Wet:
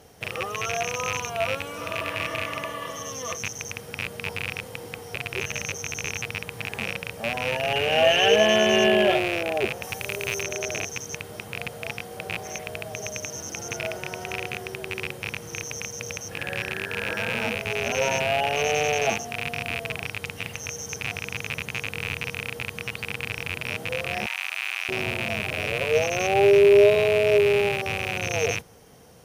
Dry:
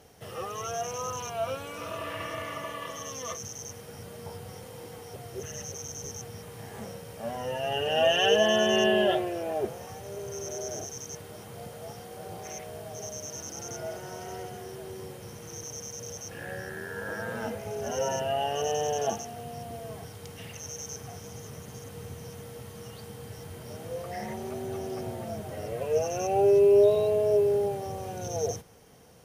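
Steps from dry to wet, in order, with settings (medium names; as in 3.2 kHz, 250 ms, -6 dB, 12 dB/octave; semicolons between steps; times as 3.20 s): rattle on loud lows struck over -42 dBFS, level -19 dBFS; 9.82–10.41 s: treble shelf 5.4 kHz -> 7.8 kHz +10 dB; 24.26–24.89 s: high-pass 1 kHz 24 dB/octave; trim +4 dB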